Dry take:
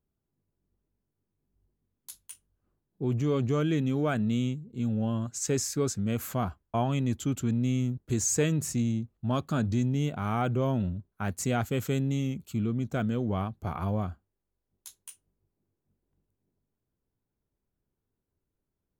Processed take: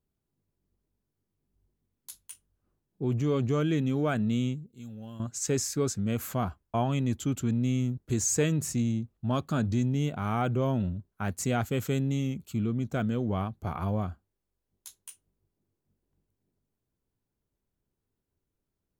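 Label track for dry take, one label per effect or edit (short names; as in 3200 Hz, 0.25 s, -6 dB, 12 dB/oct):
4.660000	5.200000	pre-emphasis coefficient 0.8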